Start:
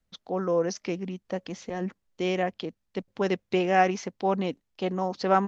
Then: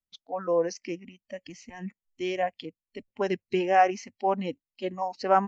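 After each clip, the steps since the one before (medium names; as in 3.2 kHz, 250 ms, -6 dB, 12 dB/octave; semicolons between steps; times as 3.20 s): spectral noise reduction 17 dB; dynamic bell 720 Hz, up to +5 dB, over -36 dBFS, Q 0.77; trim -3 dB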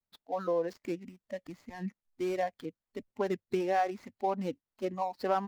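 median filter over 15 samples; compression 2.5:1, threshold -29 dBFS, peak gain reduction 9.5 dB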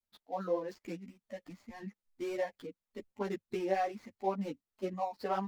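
three-phase chorus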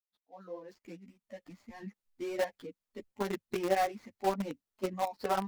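fade-in on the opening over 1.82 s; in parallel at -8 dB: bit crusher 5-bit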